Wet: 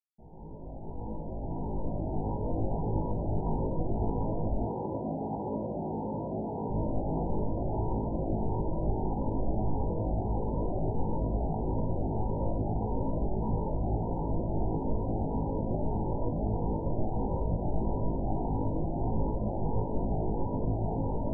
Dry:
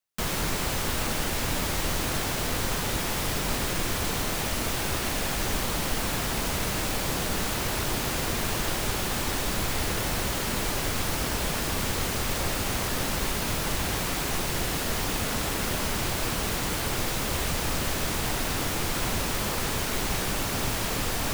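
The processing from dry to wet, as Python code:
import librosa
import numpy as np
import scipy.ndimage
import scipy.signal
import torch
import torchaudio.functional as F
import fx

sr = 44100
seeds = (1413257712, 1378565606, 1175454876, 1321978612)

y = fx.fade_in_head(x, sr, length_s=3.9)
y = fx.brickwall_lowpass(y, sr, high_hz=1000.0)
y = fx.room_flutter(y, sr, wall_m=3.2, rt60_s=0.25)
y = fx.rider(y, sr, range_db=3, speed_s=0.5)
y = fx.highpass(y, sr, hz=150.0, slope=12, at=(4.66, 6.7))
y = fx.notch_cascade(y, sr, direction='rising', hz=1.6)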